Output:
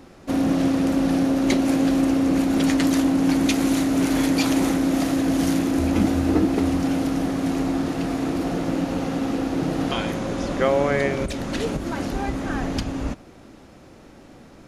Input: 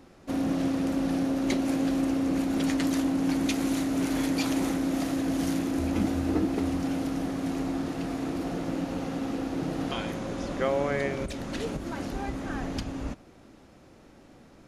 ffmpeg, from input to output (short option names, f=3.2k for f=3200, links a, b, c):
-af "volume=7dB"